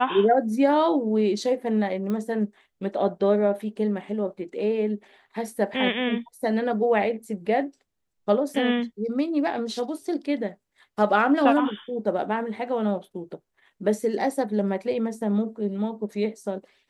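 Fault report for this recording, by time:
0:02.10: click −19 dBFS

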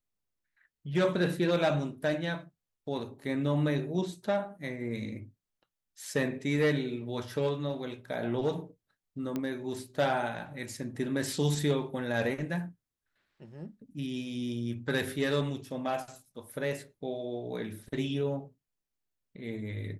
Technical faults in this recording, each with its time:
0:09.36: click −20 dBFS

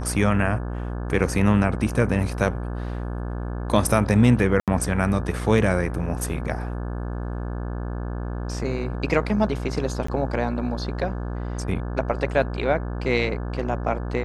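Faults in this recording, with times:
mains buzz 60 Hz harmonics 29 −29 dBFS
0:04.60–0:04.68: drop-out 77 ms
0:10.07–0:10.08: drop-out 14 ms

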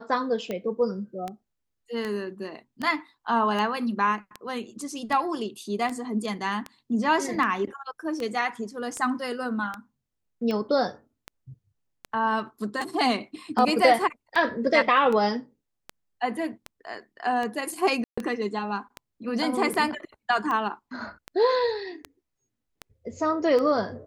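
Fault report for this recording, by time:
scratch tick 78 rpm −18 dBFS
0:18.04–0:18.18: drop-out 135 ms

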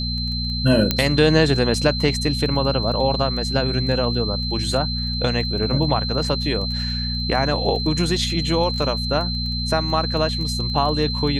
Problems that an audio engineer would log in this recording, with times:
surface crackle 12 per second −28 dBFS
mains hum 60 Hz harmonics 4 −26 dBFS
whistle 4,100 Hz −26 dBFS
0:00.91: click −3 dBFS

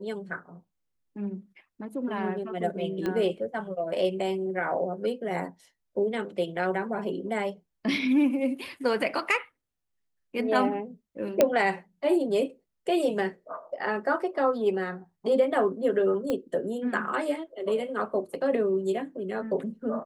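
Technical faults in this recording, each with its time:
0:03.06: click −18 dBFS
0:11.41: click −7 dBFS
0:16.30: click −16 dBFS

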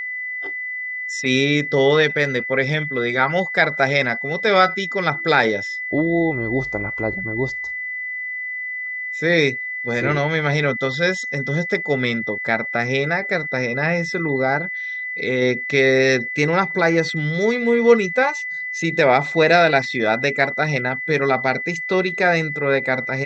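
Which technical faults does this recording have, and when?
whistle 2,000 Hz −25 dBFS

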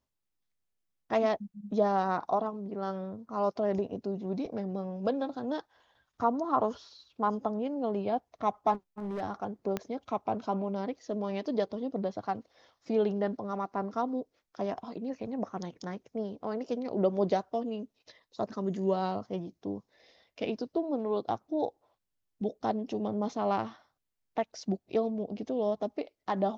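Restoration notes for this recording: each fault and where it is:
0:08.73–0:09.22: clipping −32 dBFS
0:09.77: click −18 dBFS

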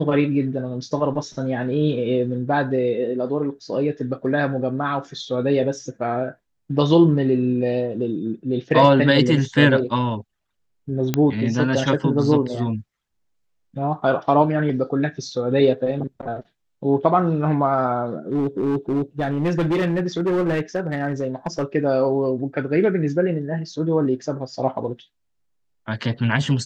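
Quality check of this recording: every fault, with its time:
0:11.14: click −6 dBFS
0:18.32–0:21.64: clipping −17 dBFS

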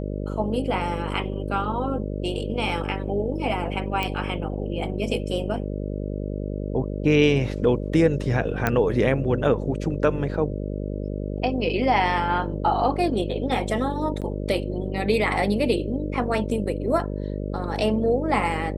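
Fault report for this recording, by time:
mains buzz 50 Hz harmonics 12 −29 dBFS
0:04.03: click −13 dBFS
0:08.67: click −8 dBFS
0:14.21–0:14.22: drop-out 7.8 ms

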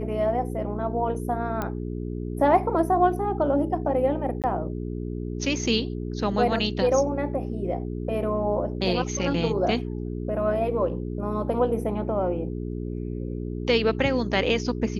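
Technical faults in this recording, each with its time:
mains hum 60 Hz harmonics 7 −31 dBFS
0:01.62: click −15 dBFS
0:04.42–0:04.44: drop-out 18 ms

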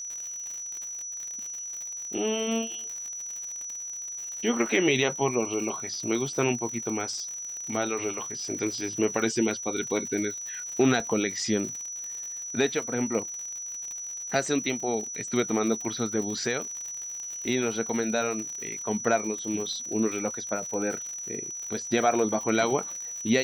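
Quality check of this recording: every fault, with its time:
surface crackle 110 per second −34 dBFS
whistle 5,900 Hz −34 dBFS
0:11.00: drop-out 2 ms

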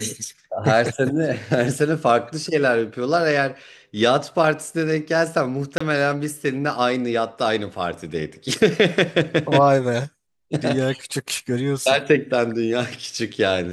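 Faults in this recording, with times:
0:05.78–0:05.80: drop-out 25 ms

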